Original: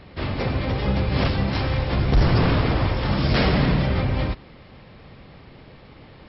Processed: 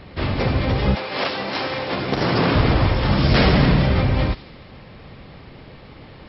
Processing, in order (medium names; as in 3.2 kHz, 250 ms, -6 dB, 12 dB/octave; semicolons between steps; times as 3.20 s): 0.94–2.54 s: high-pass 570 Hz -> 170 Hz 12 dB/octave; feedback echo behind a high-pass 74 ms, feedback 60%, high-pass 3.7 kHz, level -8.5 dB; trim +4 dB